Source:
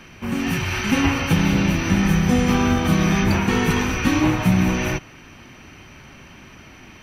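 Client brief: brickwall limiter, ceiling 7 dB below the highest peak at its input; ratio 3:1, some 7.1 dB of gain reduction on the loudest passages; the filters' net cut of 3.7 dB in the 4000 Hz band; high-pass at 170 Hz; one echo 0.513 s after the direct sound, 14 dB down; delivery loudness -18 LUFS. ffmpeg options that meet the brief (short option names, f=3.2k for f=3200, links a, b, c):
-af "highpass=170,equalizer=f=4k:t=o:g=-5.5,acompressor=threshold=-25dB:ratio=3,alimiter=limit=-20dB:level=0:latency=1,aecho=1:1:513:0.2,volume=11dB"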